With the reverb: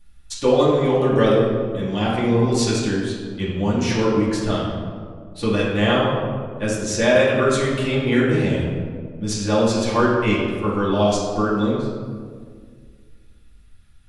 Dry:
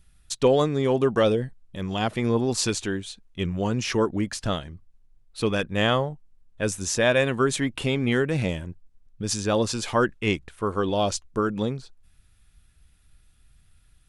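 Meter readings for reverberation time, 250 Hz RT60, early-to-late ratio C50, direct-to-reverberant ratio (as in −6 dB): 1.9 s, 2.3 s, 0.5 dB, −7.0 dB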